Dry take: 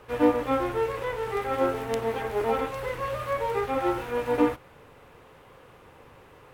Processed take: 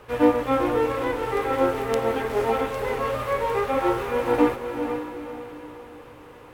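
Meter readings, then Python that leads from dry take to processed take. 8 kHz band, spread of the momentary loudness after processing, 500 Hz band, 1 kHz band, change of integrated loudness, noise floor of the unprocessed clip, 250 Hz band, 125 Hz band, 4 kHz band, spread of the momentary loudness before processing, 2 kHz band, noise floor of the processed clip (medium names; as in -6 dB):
+4.0 dB, 16 LU, +4.0 dB, +4.0 dB, +3.5 dB, -53 dBFS, +4.0 dB, +3.0 dB, +4.0 dB, 7 LU, +4.0 dB, -45 dBFS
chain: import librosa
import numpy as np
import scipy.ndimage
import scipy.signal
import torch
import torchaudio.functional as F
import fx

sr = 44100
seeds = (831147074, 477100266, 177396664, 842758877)

y = fx.echo_diffused(x, sr, ms=467, feedback_pct=43, wet_db=-7.0)
y = F.gain(torch.from_numpy(y), 3.0).numpy()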